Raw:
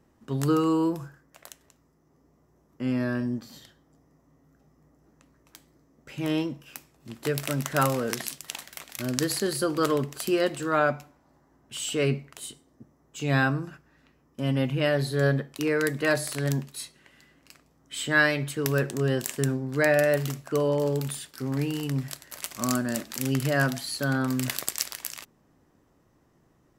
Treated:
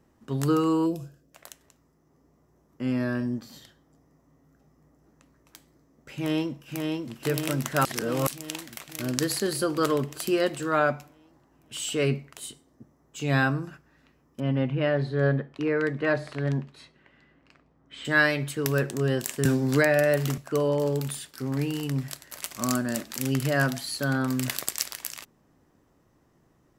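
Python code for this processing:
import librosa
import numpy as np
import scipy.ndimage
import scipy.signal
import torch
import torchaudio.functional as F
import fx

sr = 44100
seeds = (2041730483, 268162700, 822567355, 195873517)

y = fx.spec_box(x, sr, start_s=0.86, length_s=0.48, low_hz=720.0, high_hz=2400.0, gain_db=-13)
y = fx.echo_throw(y, sr, start_s=6.14, length_s=1.01, ms=540, feedback_pct=65, wet_db=-3.0)
y = fx.bessel_lowpass(y, sr, hz=2100.0, order=2, at=(14.4, 18.05))
y = fx.band_squash(y, sr, depth_pct=100, at=(19.45, 20.38))
y = fx.edit(y, sr, fx.reverse_span(start_s=7.85, length_s=0.42), tone=tone)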